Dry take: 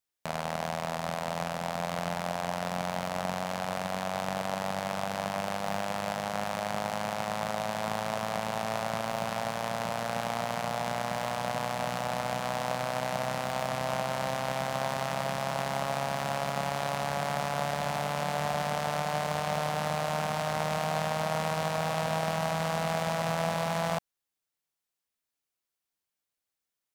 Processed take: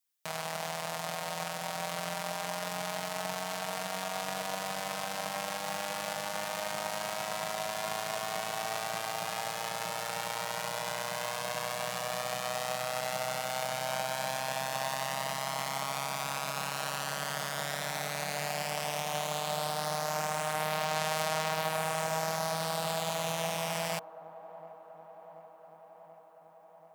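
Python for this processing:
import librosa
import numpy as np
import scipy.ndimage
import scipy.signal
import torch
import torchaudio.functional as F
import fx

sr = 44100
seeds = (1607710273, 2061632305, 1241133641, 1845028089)

y = fx.tilt_eq(x, sr, slope=2.5)
y = y + 0.87 * np.pad(y, (int(6.4 * sr / 1000.0), 0))[:len(y)]
y = fx.echo_wet_bandpass(y, sr, ms=733, feedback_pct=71, hz=510.0, wet_db=-14.5)
y = y * 10.0 ** (-5.5 / 20.0)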